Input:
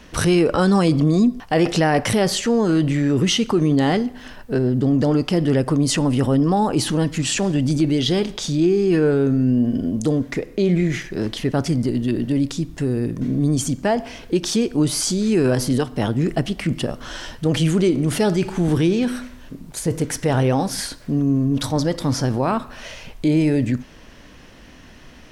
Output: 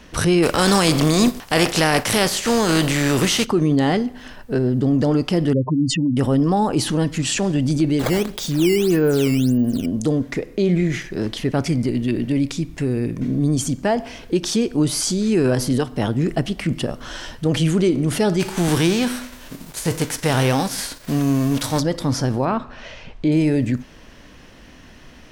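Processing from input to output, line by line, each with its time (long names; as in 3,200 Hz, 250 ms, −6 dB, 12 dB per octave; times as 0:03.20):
0:00.42–0:03.44: compressing power law on the bin magnitudes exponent 0.58
0:05.53–0:06.17: expanding power law on the bin magnitudes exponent 3.1
0:07.99–0:09.86: sample-and-hold swept by an LFO 10×, swing 160% 1.7 Hz
0:11.52–0:13.25: parametric band 2,300 Hz +8.5 dB 0.33 octaves
0:18.39–0:21.79: spectral envelope flattened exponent 0.6
0:22.45–0:23.32: high-frequency loss of the air 130 metres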